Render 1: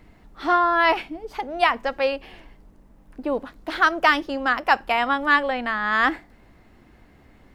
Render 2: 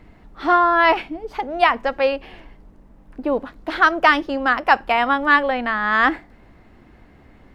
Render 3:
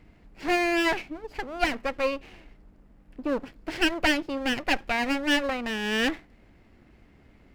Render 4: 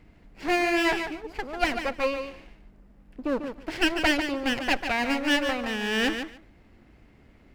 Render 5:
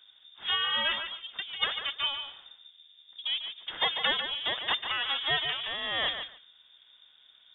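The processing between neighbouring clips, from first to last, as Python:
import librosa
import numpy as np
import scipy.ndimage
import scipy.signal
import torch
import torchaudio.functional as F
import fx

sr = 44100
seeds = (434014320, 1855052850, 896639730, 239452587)

y1 = fx.high_shelf(x, sr, hz=4800.0, db=-9.0)
y1 = y1 * librosa.db_to_amplitude(4.0)
y2 = fx.lower_of_two(y1, sr, delay_ms=0.41)
y2 = y2 * librosa.db_to_amplitude(-6.5)
y3 = fx.echo_feedback(y2, sr, ms=145, feedback_pct=15, wet_db=-8)
y4 = fx.freq_invert(y3, sr, carrier_hz=3600)
y4 = y4 * librosa.db_to_amplitude(-5.0)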